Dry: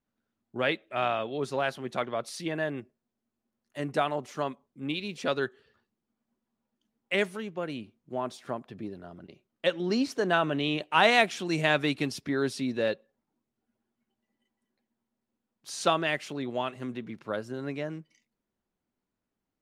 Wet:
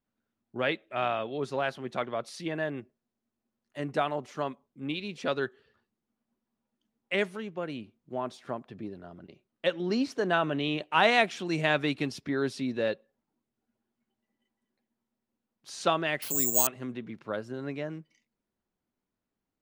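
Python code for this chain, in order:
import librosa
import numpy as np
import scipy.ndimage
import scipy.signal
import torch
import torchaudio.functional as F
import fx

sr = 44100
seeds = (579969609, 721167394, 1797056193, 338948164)

y = fx.high_shelf(x, sr, hz=8100.0, db=-9.5)
y = fx.resample_bad(y, sr, factor=6, down='none', up='zero_stuff', at=(16.22, 16.67))
y = y * 10.0 ** (-1.0 / 20.0)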